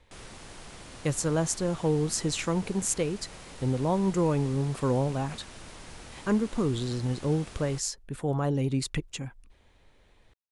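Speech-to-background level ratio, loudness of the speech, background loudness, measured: 17.0 dB, −29.0 LKFS, −46.0 LKFS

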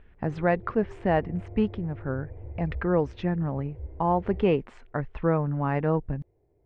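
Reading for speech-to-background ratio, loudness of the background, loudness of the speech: 15.5 dB, −43.5 LKFS, −28.0 LKFS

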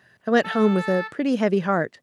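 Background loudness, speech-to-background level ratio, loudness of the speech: −33.0 LKFS, 11.0 dB, −22.0 LKFS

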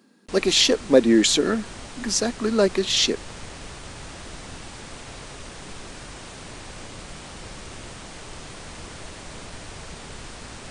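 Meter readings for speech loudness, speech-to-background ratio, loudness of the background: −20.0 LKFS, 18.5 dB, −38.5 LKFS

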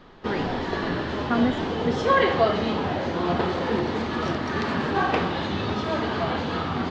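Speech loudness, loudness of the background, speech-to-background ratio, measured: −29.5 LKFS, −25.0 LKFS, −4.5 dB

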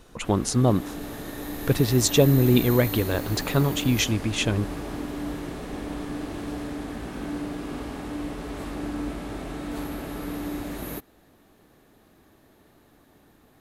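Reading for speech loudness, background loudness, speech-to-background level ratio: −23.0 LKFS, −33.0 LKFS, 10.0 dB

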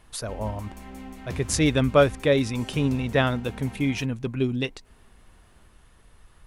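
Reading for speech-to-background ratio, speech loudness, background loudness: 15.5 dB, −25.0 LKFS, −40.5 LKFS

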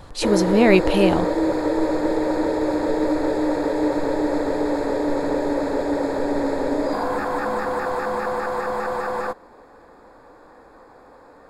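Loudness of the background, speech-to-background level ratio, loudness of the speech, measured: −23.0 LKFS, 4.0 dB, −19.0 LKFS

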